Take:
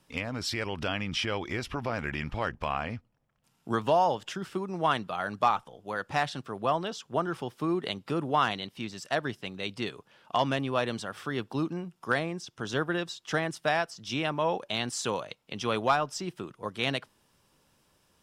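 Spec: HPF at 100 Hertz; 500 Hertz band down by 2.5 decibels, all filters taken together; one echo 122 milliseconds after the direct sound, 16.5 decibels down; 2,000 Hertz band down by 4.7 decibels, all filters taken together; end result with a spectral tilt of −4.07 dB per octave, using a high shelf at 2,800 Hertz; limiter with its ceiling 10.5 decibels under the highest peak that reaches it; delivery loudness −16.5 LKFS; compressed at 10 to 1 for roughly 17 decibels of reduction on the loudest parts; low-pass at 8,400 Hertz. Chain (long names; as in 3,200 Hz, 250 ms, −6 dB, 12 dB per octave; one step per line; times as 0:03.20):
high-pass filter 100 Hz
low-pass filter 8,400 Hz
parametric band 500 Hz −3 dB
parametric band 2,000 Hz −8 dB
high-shelf EQ 2,800 Hz +4 dB
downward compressor 10 to 1, threshold −39 dBFS
brickwall limiter −32.5 dBFS
single-tap delay 122 ms −16.5 dB
level +28.5 dB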